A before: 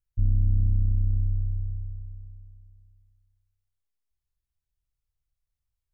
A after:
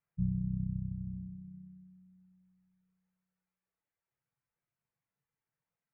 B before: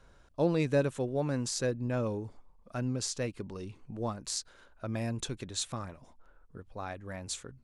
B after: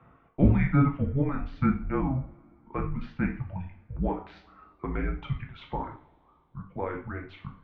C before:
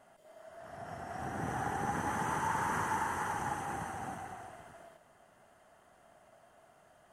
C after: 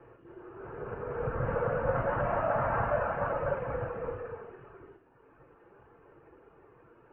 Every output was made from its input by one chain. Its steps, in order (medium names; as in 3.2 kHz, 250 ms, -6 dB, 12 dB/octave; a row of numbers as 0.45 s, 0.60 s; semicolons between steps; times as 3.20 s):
mistuned SSB -280 Hz 160–2600 Hz; reverb removal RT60 1.5 s; two-slope reverb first 0.43 s, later 3 s, from -28 dB, DRR 1 dB; trim +6 dB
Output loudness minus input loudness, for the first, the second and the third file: -10.0 LU, +4.5 LU, +4.5 LU